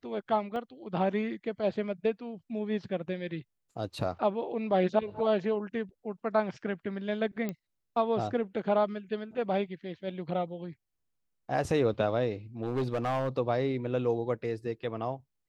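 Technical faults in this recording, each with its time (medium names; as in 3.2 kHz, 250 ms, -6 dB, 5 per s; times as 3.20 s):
0.56 s: dropout 2.1 ms
7.49 s: pop -21 dBFS
12.62–13.38 s: clipped -25.5 dBFS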